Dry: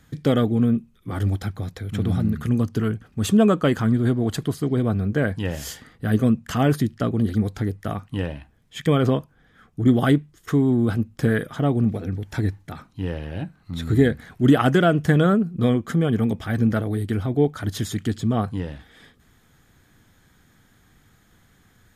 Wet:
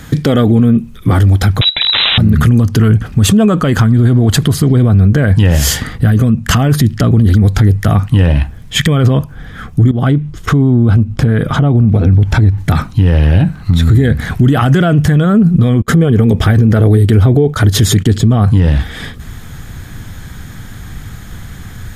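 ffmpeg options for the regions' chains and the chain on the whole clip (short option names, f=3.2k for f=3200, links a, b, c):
-filter_complex "[0:a]asettb=1/sr,asplit=3[a][b][c];[a]atrim=end=1.614[d];[b]atrim=start=1.61:end=2.18,asetpts=PTS-STARTPTS,afade=t=in:d=0.004:c=qsin,afade=t=out:st=0.566:d=0.004:c=qsin,aeval=exprs='(mod(13.3*val(0)+1,2)-1)/13.3':c=same,lowpass=f=3.4k:t=q:w=0.5098,lowpass=f=3.4k:t=q:w=0.6013,lowpass=f=3.4k:t=q:w=0.9,lowpass=f=3.4k:t=q:w=2.563,afreqshift=-4000[e];[c]atrim=start=2.176[f];[d][e]acrossfade=d=0.004:c1=hsin:c2=qsin[g];[g][f]acrossfade=d=0.004:c1=qsin:c2=hsin,asettb=1/sr,asplit=3[h][i][j];[h]atrim=end=9.914[k];[i]atrim=start=9.91:end=12.58,asetpts=PTS-STARTPTS,afade=t=in:d=0.004:c=qsin,afade=t=out:st=2.666:d=0.004:c=qsin,lowpass=f=2.7k:p=1,equalizer=f=1.8k:w=5.7:g=-6.5,acompressor=threshold=-34dB:ratio=3:attack=3.2:release=140:knee=1:detection=peak[l];[j]atrim=start=12.576[m];[k][l]acrossfade=d=0.004:c1=hsin:c2=qsin[n];[n][m]acrossfade=d=0.004:c1=qsin:c2=hsin,asettb=1/sr,asplit=3[o][p][q];[o]atrim=end=15.824[r];[p]atrim=start=15.82:end=18.3,asetpts=PTS-STARTPTS,afade=t=in:d=0.004:c=qsin,afade=t=out:st=2.476:d=0.004:c=qsin,agate=range=-26dB:threshold=-38dB:ratio=16:release=100:detection=peak,equalizer=f=420:t=o:w=0.69:g=8[s];[q]atrim=start=18.296[t];[r][s]acrossfade=d=0.004:c1=hsin:c2=qsin[u];[u][t]acrossfade=d=0.004:c1=qsin:c2=hsin,asubboost=boost=2.5:cutoff=180,acompressor=threshold=-23dB:ratio=3,alimiter=level_in=24.5dB:limit=-1dB:release=50:level=0:latency=1,volume=-1dB"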